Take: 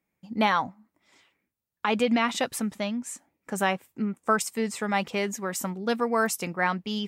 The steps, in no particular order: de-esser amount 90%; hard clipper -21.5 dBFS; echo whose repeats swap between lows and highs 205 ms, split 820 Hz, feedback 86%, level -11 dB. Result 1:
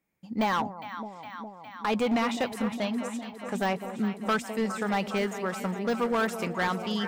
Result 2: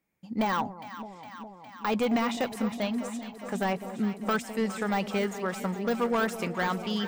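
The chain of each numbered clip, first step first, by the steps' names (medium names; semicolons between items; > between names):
de-esser > echo whose repeats swap between lows and highs > hard clipper; hard clipper > de-esser > echo whose repeats swap between lows and highs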